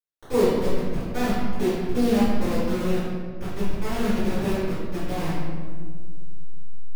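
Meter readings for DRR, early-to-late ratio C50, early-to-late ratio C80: -15.5 dB, -2.0 dB, 1.0 dB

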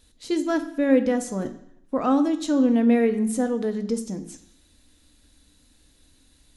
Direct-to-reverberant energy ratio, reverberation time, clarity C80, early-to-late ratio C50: 7.5 dB, 0.70 s, 15.0 dB, 12.5 dB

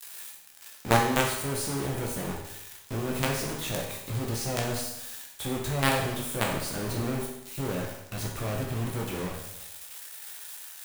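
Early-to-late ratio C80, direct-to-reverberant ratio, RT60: 6.0 dB, -1.5 dB, 0.85 s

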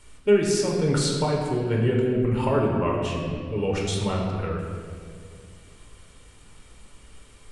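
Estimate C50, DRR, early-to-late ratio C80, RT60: 2.0 dB, -2.0 dB, 3.5 dB, 2.1 s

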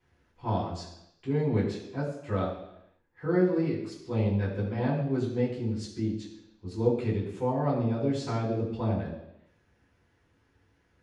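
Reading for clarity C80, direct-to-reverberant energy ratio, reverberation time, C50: 7.0 dB, -9.0 dB, 0.85 s, 5.0 dB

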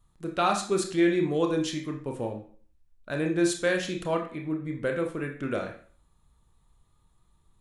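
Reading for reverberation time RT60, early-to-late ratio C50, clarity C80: 0.50 s, 8.0 dB, 12.5 dB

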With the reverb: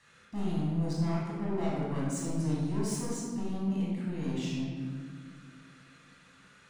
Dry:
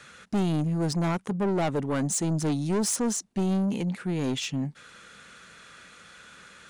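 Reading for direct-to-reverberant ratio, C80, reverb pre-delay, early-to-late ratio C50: -6.0 dB, 1.0 dB, 20 ms, -1.5 dB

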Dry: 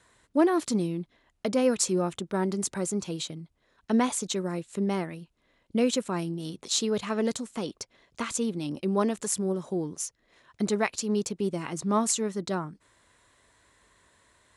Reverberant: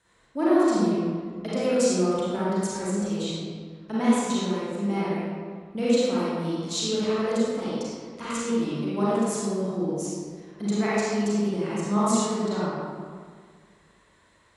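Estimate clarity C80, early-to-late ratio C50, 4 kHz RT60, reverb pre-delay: -2.5 dB, -6.0 dB, 1.1 s, 32 ms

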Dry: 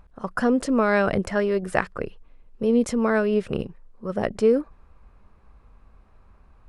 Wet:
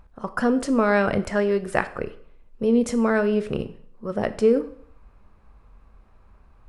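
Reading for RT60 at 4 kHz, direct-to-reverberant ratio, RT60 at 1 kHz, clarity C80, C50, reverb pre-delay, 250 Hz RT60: 0.55 s, 11.0 dB, 0.60 s, 18.0 dB, 15.5 dB, 7 ms, 0.60 s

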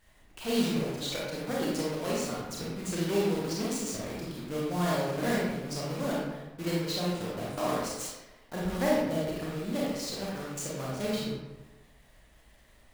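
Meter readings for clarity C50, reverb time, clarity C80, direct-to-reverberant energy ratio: -1.0 dB, 1.1 s, 2.5 dB, -5.5 dB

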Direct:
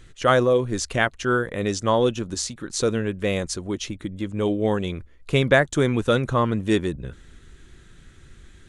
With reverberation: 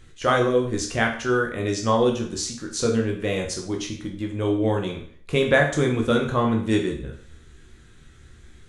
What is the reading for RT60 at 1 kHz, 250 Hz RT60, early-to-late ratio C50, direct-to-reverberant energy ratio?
0.50 s, 0.50 s, 8.0 dB, 1.0 dB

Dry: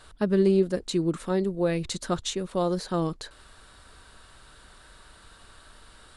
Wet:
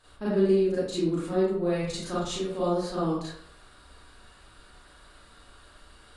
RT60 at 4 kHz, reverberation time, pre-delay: 0.40 s, 0.70 s, 30 ms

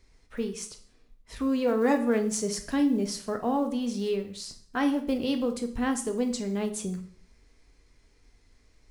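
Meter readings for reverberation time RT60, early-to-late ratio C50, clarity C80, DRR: 0.55 s, 11.5 dB, 15.5 dB, 5.0 dB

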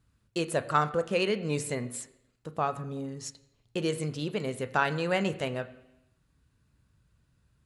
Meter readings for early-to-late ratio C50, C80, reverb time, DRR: 15.0 dB, 17.0 dB, 0.85 s, 10.0 dB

